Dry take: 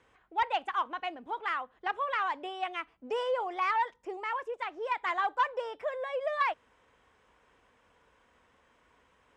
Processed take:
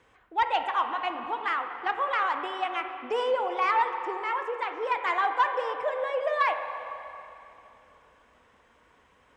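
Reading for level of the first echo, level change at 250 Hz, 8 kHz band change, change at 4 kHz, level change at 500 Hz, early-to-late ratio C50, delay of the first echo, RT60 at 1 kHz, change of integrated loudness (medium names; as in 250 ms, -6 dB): no echo, +4.5 dB, no reading, +4.0 dB, +5.0 dB, 6.5 dB, no echo, 2.9 s, +4.5 dB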